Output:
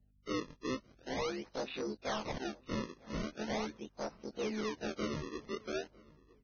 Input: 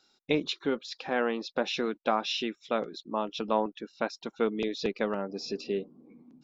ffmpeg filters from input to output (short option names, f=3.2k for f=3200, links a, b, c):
-filter_complex "[0:a]afftfilt=real='re':imag='-im':win_size=2048:overlap=0.75,afwtdn=0.0126,aresample=16000,asoftclip=type=tanh:threshold=-31.5dB,aresample=44100,acrusher=samples=33:mix=1:aa=0.000001:lfo=1:lforange=52.8:lforate=0.42,aeval=exprs='val(0)+0.000398*(sin(2*PI*50*n/s)+sin(2*PI*2*50*n/s)/2+sin(2*PI*3*50*n/s)/3+sin(2*PI*4*50*n/s)/4+sin(2*PI*5*50*n/s)/5)':c=same,asplit=2[a][b];[b]adelay=953,lowpass=f=2.9k:p=1,volume=-23dB,asplit=2[c][d];[d]adelay=953,lowpass=f=2.9k:p=1,volume=0.32[e];[c][e]amix=inputs=2:normalize=0[f];[a][f]amix=inputs=2:normalize=0" -ar 16000 -c:a libvorbis -b:a 16k